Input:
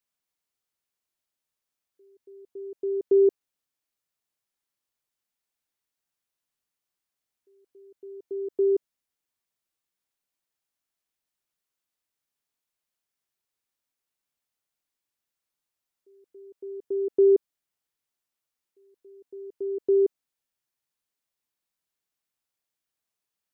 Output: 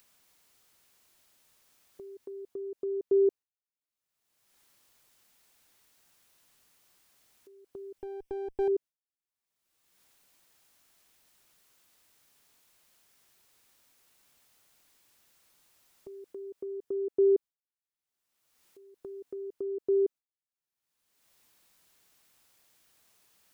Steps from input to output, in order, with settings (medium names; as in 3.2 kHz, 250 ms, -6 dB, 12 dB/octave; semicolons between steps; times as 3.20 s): 7.98–8.68 s: comb filter that takes the minimum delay 0.36 ms; gate with hold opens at -54 dBFS; upward compressor, threshold -27 dBFS; trim -5 dB